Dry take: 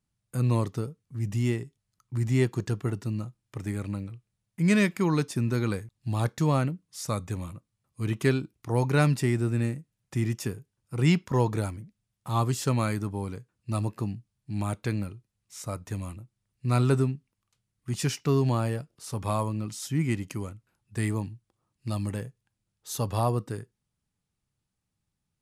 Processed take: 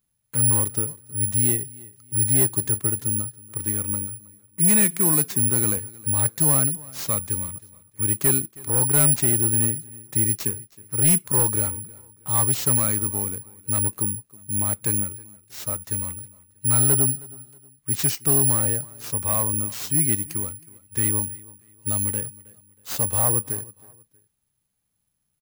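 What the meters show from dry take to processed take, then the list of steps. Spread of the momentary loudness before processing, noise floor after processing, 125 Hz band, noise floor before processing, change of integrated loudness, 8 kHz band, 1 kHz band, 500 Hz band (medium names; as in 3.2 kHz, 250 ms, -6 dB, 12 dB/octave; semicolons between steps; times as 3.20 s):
15 LU, -74 dBFS, -0.5 dB, -83 dBFS, +8.5 dB, +22.5 dB, -1.0 dB, -1.5 dB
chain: careless resampling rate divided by 4×, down none, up zero stuff; overload inside the chain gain 7.5 dB; feedback delay 318 ms, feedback 33%, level -22 dB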